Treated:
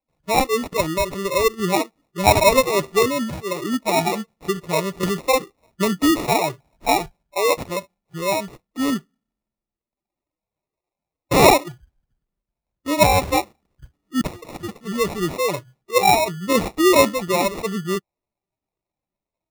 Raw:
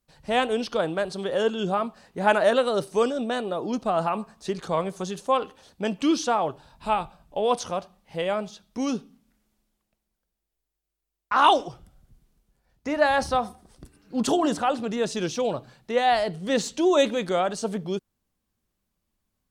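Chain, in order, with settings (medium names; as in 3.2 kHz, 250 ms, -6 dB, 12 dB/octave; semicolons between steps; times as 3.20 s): 14.21–14.81 s: high-pass 1.5 kHz 12 dB/octave; spectral noise reduction 22 dB; sample-and-hold 28×; 5.03–6.94 s: three bands compressed up and down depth 70%; trim +6 dB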